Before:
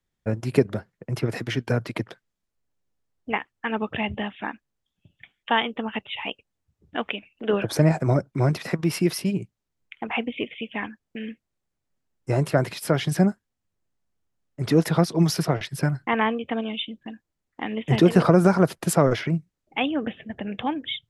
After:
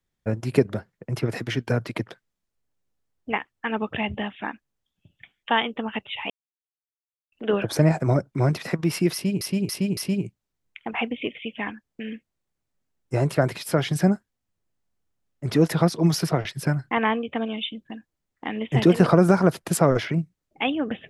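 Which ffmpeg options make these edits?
-filter_complex "[0:a]asplit=6[a][b][c][d][e][f];[a]atrim=end=6.3,asetpts=PTS-STARTPTS,afade=t=out:st=6.296:d=0.004:c=hsin[g];[b]atrim=start=6.3:end=7.32,asetpts=PTS-STARTPTS,volume=0[h];[c]atrim=start=7.32:end=9.412,asetpts=PTS-STARTPTS,afade=t=in:d=0.004:c=hsin[i];[d]atrim=start=9.128:end=9.412[j];[e]atrim=start=9.128:end=9.412[k];[f]atrim=start=9.128[l];[g][h][i]concat=n=3:v=0:a=1[m];[m][j]acrossfade=d=0.004:c1=hsin:c2=hsin[n];[n][k]acrossfade=d=0.004:c1=hsin:c2=hsin[o];[o][l]acrossfade=d=0.004:c1=hsin:c2=hsin"

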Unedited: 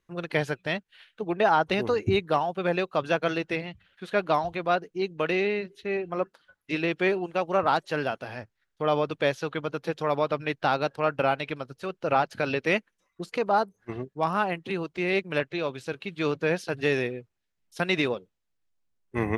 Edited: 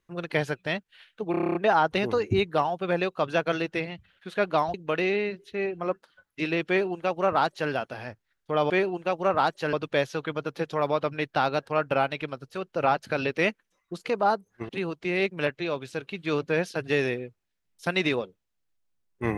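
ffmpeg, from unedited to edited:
-filter_complex "[0:a]asplit=13[a][b][c][d][e][f][g][h][i][j][k][l][m];[a]atrim=end=1.342[n];[b]atrim=start=1.308:end=1.342[o];[c]atrim=start=1.308:end=1.342[p];[d]atrim=start=1.308:end=1.342[q];[e]atrim=start=1.308:end=1.342[r];[f]atrim=start=1.308:end=1.342[s];[g]atrim=start=1.308:end=1.342[t];[h]atrim=start=1.308:end=1.342[u];[i]atrim=start=1.308:end=4.502[v];[j]atrim=start=5.048:end=9.012[w];[k]atrim=start=6.988:end=8.022[x];[l]atrim=start=9.008:end=13.972[y];[m]atrim=start=14.618[z];[n][o]acrossfade=d=0.004:c1=hsin:c2=hsin[aa];[aa][p]acrossfade=d=0.004:c1=hsin:c2=hsin[ab];[ab][q]acrossfade=d=0.004:c1=hsin:c2=hsin[ac];[ac][r]acrossfade=d=0.004:c1=hsin:c2=hsin[ad];[ad][s]acrossfade=d=0.004:c1=hsin:c2=hsin[ae];[ae][t]acrossfade=d=0.004:c1=hsin:c2=hsin[af];[af][u]acrossfade=d=0.004:c1=hsin:c2=hsin[ag];[ag][v]acrossfade=d=0.004:c1=hsin:c2=hsin[ah];[ah][w]acrossfade=d=0.004:c1=hsin:c2=hsin[ai];[ai][x]acrossfade=d=0.004:c1=hsin:c2=hsin[aj];[aj][y]acrossfade=d=0.004:c1=hsin:c2=hsin[ak];[ak][z]acrossfade=d=0.004:c1=hsin:c2=hsin"

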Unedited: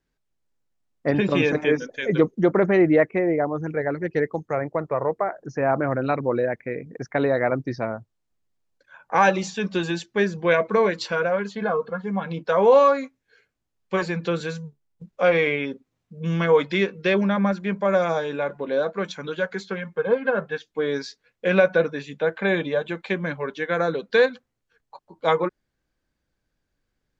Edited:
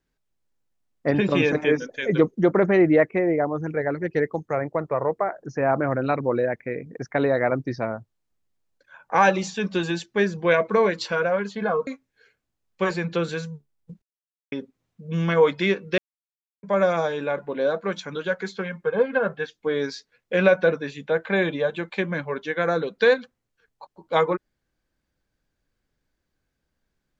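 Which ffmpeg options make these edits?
-filter_complex "[0:a]asplit=6[a][b][c][d][e][f];[a]atrim=end=11.872[g];[b]atrim=start=12.988:end=15.14,asetpts=PTS-STARTPTS,afade=t=out:st=2.148:d=0.004:c=hsin[h];[c]atrim=start=15.14:end=15.64,asetpts=PTS-STARTPTS,volume=0[i];[d]atrim=start=15.64:end=17.1,asetpts=PTS-STARTPTS,afade=t=in:d=0.004:c=hsin,afade=t=out:st=1.456:d=0.004:c=hsin[j];[e]atrim=start=17.1:end=17.75,asetpts=PTS-STARTPTS,volume=0[k];[f]atrim=start=17.75,asetpts=PTS-STARTPTS,afade=t=in:d=0.004:c=hsin[l];[h][i][j][k][l]concat=n=5:v=0:a=1[m];[g][m]acrossfade=d=0.004:c1=hsin:c2=hsin"

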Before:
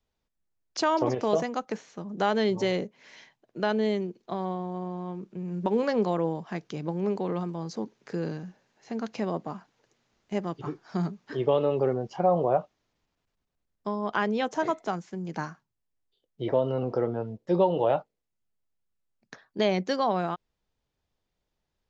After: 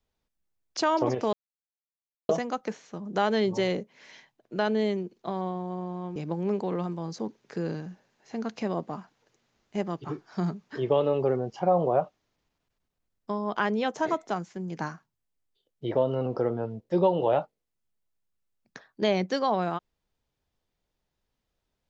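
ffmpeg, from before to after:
-filter_complex "[0:a]asplit=3[a][b][c];[a]atrim=end=1.33,asetpts=PTS-STARTPTS,afade=t=out:st=1.326:d=0.004:c=hsin,apad=pad_dur=0.96[d];[b]atrim=start=1.33:end=5.202,asetpts=PTS-STARTPTS,afade=t=in:d=0.004:c=hsin[e];[c]atrim=start=6.728[f];[d][e]concat=n=2:v=0:a=1[g];[g][f]acrossfade=d=0.004:c1=hsin:c2=hsin"

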